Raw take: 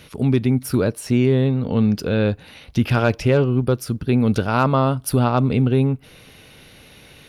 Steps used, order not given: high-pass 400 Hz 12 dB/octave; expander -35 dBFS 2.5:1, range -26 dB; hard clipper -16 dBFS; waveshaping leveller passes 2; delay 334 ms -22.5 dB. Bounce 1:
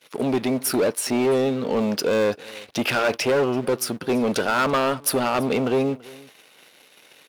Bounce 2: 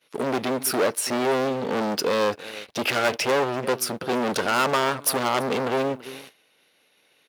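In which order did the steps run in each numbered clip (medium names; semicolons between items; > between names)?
waveshaping leveller > expander > high-pass > hard clipper > delay; delay > expander > waveshaping leveller > hard clipper > high-pass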